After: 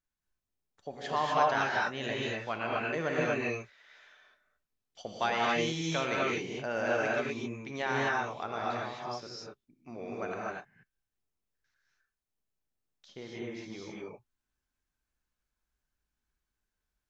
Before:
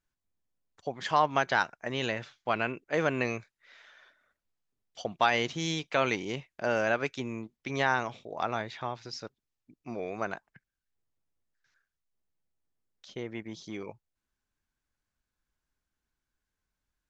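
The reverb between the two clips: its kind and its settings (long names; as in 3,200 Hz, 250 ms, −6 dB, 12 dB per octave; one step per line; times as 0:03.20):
reverb whose tail is shaped and stops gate 280 ms rising, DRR −4.5 dB
level −7 dB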